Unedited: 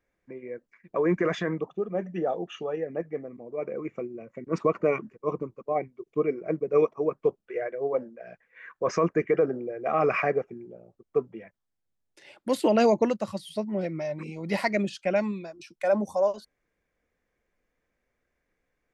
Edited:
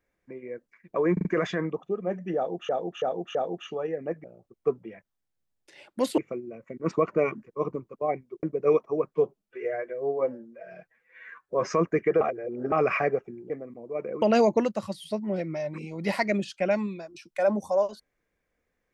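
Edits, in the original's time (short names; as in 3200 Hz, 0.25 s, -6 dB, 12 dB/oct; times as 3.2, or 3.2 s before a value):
1.13 stutter 0.04 s, 4 plays
2.24–2.57 loop, 4 plays
3.13–3.85 swap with 10.73–12.67
6.1–6.51 cut
7.23–8.93 stretch 1.5×
9.44–9.95 reverse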